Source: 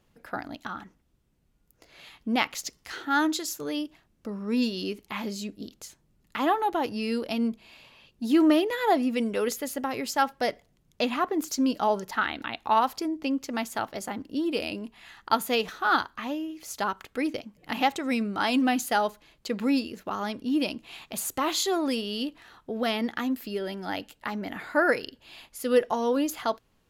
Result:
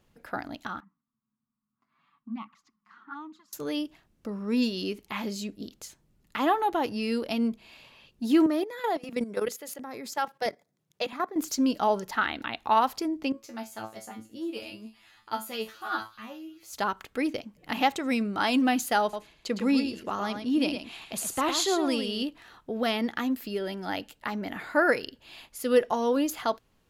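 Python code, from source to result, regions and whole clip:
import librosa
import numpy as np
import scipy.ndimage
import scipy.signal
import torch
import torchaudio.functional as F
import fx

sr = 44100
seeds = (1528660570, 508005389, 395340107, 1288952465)

y = fx.chain(x, sr, fx.env_flanger(rest_ms=8.3, full_db=-20.5),
    fx.double_bandpass(hz=490.0, octaves=2.4), at=(0.8, 3.53))
y = fx.chain(y, sr, fx.highpass(hz=130.0, slope=24),
    fx.level_steps(step_db=13),
    fx.filter_lfo_notch(shape='square', hz=1.5, low_hz=250.0, high_hz=2900.0, q=2.7), at=(8.46, 11.36))
y = fx.chain(y, sr, fx.high_shelf(hz=10000.0, db=4.5),
    fx.comb_fb(f0_hz=110.0, decay_s=0.22, harmonics='all', damping=0.0, mix_pct=100),
    fx.echo_wet_highpass(ms=200, feedback_pct=55, hz=4500.0, wet_db=-14.0), at=(13.32, 16.73))
y = fx.chain(y, sr, fx.lowpass(hz=12000.0, slope=24),
    fx.echo_single(ms=110, db=-7.5), at=(19.02, 22.23))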